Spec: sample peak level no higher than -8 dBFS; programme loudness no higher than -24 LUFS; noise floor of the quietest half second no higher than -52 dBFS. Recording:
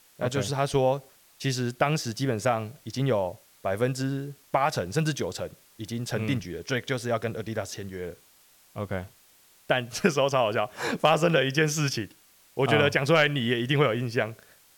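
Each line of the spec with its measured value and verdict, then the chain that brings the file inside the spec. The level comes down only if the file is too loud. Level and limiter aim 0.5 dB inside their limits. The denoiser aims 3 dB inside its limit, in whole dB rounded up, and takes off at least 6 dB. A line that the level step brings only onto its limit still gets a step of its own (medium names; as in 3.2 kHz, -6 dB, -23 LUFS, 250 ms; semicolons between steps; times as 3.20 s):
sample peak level -7.0 dBFS: fail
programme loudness -27.0 LUFS: pass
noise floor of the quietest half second -59 dBFS: pass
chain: peak limiter -8.5 dBFS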